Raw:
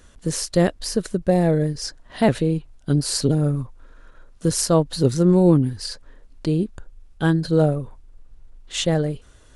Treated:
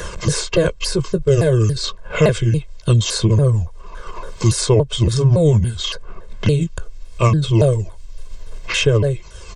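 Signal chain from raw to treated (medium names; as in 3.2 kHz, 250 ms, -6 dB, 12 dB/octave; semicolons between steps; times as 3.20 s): sawtooth pitch modulation -7.5 st, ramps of 282 ms; comb 1.9 ms, depth 95%; three bands compressed up and down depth 70%; trim +4 dB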